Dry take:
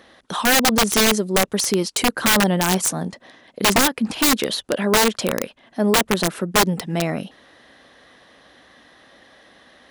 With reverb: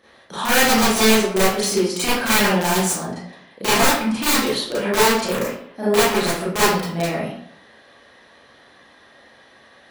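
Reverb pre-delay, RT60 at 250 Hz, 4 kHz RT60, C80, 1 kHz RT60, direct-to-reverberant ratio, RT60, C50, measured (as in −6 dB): 30 ms, 0.60 s, 0.45 s, 4.0 dB, 0.65 s, −11.5 dB, 0.65 s, −2.0 dB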